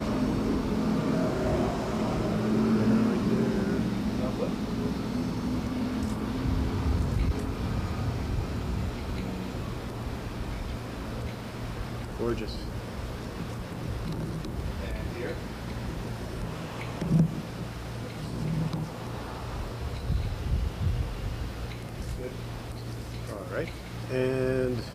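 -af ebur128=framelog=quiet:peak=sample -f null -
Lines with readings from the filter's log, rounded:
Integrated loudness:
  I:         -31.2 LUFS
  Threshold: -41.2 LUFS
Loudness range:
  LRA:         8.2 LU
  Threshold: -51.5 LUFS
  LRA low:   -35.3 LUFS
  LRA high:  -27.0 LUFS
Sample peak:
  Peak:      -11.1 dBFS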